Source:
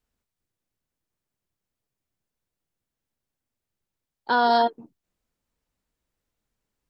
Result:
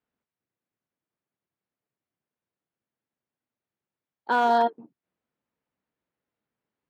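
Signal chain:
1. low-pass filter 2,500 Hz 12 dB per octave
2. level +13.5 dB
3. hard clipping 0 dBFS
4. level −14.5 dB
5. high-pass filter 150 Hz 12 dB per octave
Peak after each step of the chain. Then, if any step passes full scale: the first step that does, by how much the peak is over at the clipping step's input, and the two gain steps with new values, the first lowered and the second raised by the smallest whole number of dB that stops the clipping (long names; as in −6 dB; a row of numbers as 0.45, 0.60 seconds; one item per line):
−10.5, +3.0, 0.0, −14.5, −12.5 dBFS
step 2, 3.0 dB
step 2 +10.5 dB, step 4 −11.5 dB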